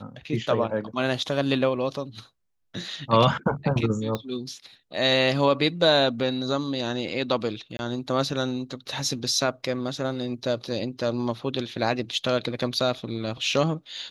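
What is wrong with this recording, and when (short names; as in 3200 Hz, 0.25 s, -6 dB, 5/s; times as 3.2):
4.15 pop -14 dBFS
7.77–7.79 gap 21 ms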